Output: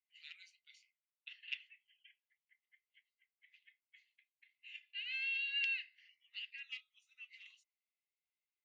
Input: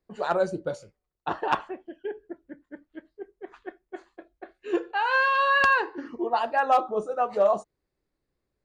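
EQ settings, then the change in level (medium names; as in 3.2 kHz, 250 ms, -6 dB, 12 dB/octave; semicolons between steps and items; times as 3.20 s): rippled Chebyshev high-pass 2 kHz, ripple 6 dB; distance through air 310 m; +3.0 dB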